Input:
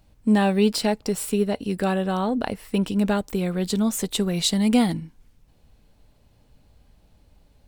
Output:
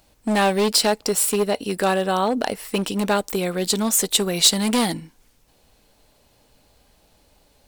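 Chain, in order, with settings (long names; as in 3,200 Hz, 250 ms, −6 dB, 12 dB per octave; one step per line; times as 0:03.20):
hard clipping −17 dBFS, distortion −14 dB
bass and treble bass −12 dB, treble +5 dB
level +6 dB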